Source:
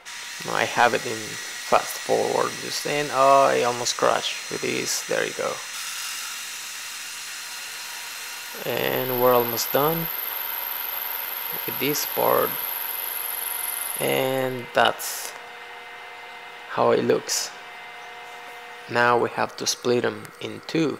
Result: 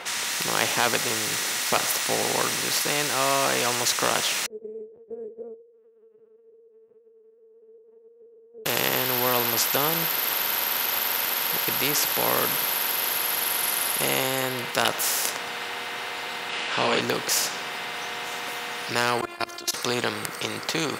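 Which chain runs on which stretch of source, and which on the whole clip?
4.46–8.66 s: Butterworth band-pass 440 Hz, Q 7.2 + LPC vocoder at 8 kHz pitch kept
16.49–17.01 s: steep low-pass 9.5 kHz + peaking EQ 2.8 kHz +10.5 dB 0.58 oct + doubling 38 ms -2.5 dB
19.21–19.74 s: hum notches 50/100/150/200/250/300/350/400/450/500 Hz + level held to a coarse grid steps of 22 dB + robot voice 348 Hz
whole clip: high-pass 110 Hz 12 dB/octave; spectrum-flattening compressor 2:1

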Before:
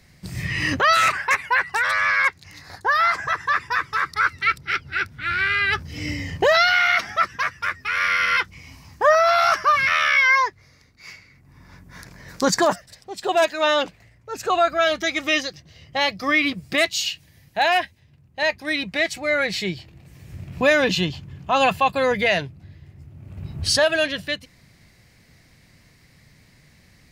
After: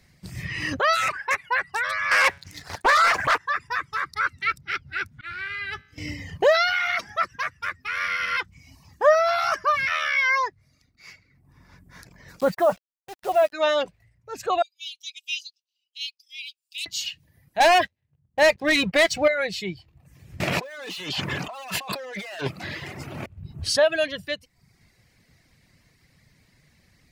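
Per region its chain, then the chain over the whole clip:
2.11–3.38 s: de-hum 140 Hz, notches 30 + waveshaping leveller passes 3 + loudspeaker Doppler distortion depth 0.88 ms
5.21–5.98 s: expander -30 dBFS + feedback comb 52 Hz, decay 0.97 s
12.40–13.53 s: distance through air 430 m + comb 1.5 ms, depth 34% + word length cut 6-bit, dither none
14.62–16.86 s: steep high-pass 2.5 kHz 96 dB/octave + upward expansion, over -48 dBFS
17.60–19.28 s: level-controlled noise filter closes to 1.4 kHz, open at -15.5 dBFS + waveshaping leveller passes 3
20.40–23.26 s: overdrive pedal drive 30 dB, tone 4.7 kHz, clips at -7 dBFS + high-pass 260 Hz 6 dB/octave + compressor with a negative ratio -27 dBFS
whole clip: reverb removal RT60 0.69 s; dynamic bell 570 Hz, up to +6 dB, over -35 dBFS, Q 2.4; trim -4.5 dB

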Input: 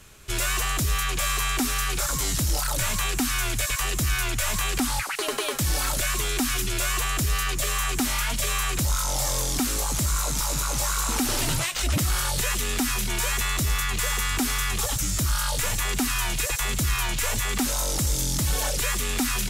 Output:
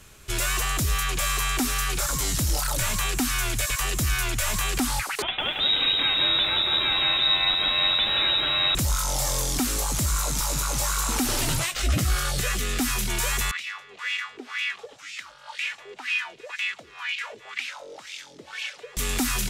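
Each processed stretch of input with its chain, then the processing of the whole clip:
5.22–8.75 s: frequency inversion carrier 3.8 kHz + bit-crushed delay 174 ms, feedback 55%, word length 9-bit, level -4.5 dB
11.73–12.81 s: Butterworth band-stop 930 Hz, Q 4.5 + treble shelf 6.3 kHz -5.5 dB + doubling 16 ms -7 dB
13.51–18.97 s: frequency weighting D + wah-wah 2 Hz 410–2600 Hz, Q 5
whole clip: none

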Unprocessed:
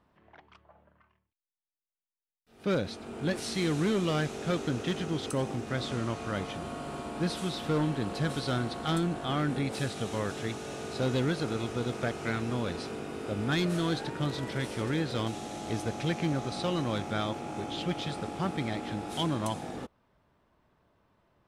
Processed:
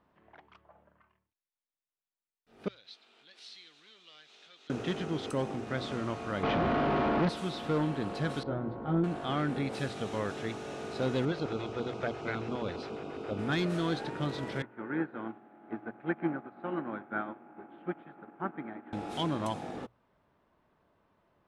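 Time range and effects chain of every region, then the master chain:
2.68–4.70 s: compression 4:1, threshold -35 dBFS + band-pass filter 3.8 kHz, Q 2.4
6.43–7.29 s: waveshaping leveller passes 5 + distance through air 250 m
8.43–9.04 s: Bessel low-pass 740 Hz + doubling 18 ms -4.5 dB
11.25–13.39 s: low-pass 5.6 kHz + LFO notch square 7.3 Hz 210–1800 Hz
14.62–18.93 s: cabinet simulation 190–2100 Hz, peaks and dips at 230 Hz +5 dB, 340 Hz +5 dB, 490 Hz -5 dB, 860 Hz +4 dB, 1.5 kHz +9 dB + delay 100 ms -14 dB + upward expansion 2.5:1, over -37 dBFS
whole clip: low-pass 3 kHz 6 dB/octave; bass shelf 150 Hz -6 dB; hum notches 60/120 Hz

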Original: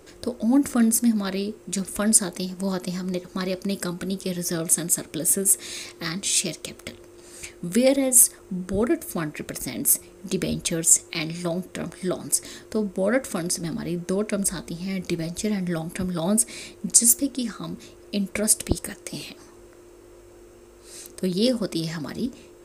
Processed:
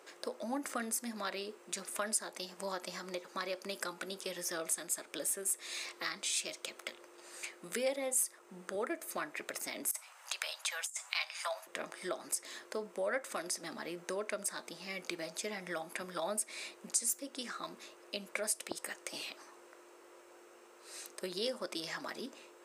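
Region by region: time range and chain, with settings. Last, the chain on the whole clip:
9.91–11.67 s: steep high-pass 720 Hz + compressor with a negative ratio -25 dBFS, ratio -0.5
whole clip: high-pass 710 Hz 12 dB/octave; treble shelf 3.7 kHz -9 dB; compression 2:1, threshold -37 dBFS

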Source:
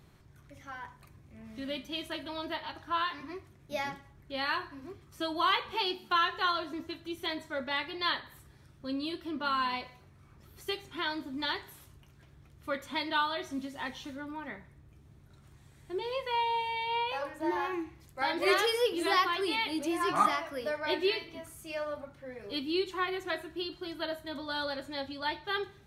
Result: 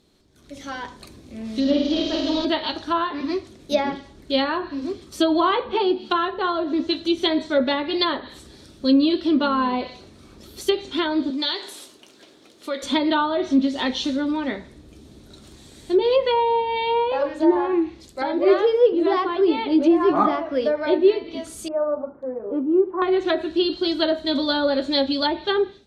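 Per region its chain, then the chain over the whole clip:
1.60–2.45 s: one-bit delta coder 32 kbps, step -46 dBFS + peaking EQ 2.1 kHz -7.5 dB 2 oct + flutter echo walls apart 8.8 m, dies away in 0.9 s
11.30–12.83 s: high-pass 350 Hz + compression 2:1, threshold -44 dBFS + decimation joined by straight lines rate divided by 2×
21.68–23.02 s: steep low-pass 1.2 kHz + gate with hold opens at -46 dBFS, closes at -54 dBFS + tilt EQ +3 dB/octave
whole clip: low-pass that closes with the level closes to 1.2 kHz, closed at -29 dBFS; graphic EQ 125/250/500/1000/2000/4000/8000 Hz -11/+9/+6/-3/-4/+11/+5 dB; level rider gain up to 16.5 dB; trim -4.5 dB

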